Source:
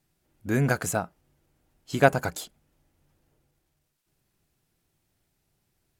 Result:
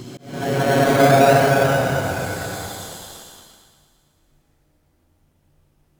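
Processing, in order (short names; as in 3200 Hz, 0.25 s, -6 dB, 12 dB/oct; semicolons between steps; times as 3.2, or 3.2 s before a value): Paulstretch 4.3×, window 0.50 s, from 1.78; in parallel at -3.5 dB: decimation with a swept rate 14×, swing 60% 0.4 Hz; on the sum: thinning echo 0.114 s, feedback 70%, high-pass 250 Hz, level -12 dB; auto swell 0.274 s; gain +2.5 dB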